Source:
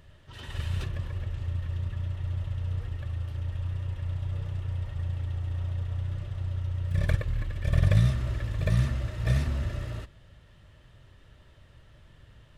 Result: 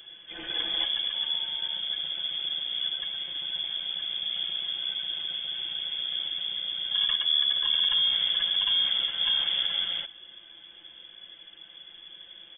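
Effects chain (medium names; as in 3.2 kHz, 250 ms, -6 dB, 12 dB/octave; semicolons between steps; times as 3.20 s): comb 5.9 ms, depth 100%; peak limiter -21.5 dBFS, peak gain reduction 10.5 dB; 1.14–1.78 s: whistle 2.5 kHz -56 dBFS; frequency inversion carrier 3.4 kHz; trim +2 dB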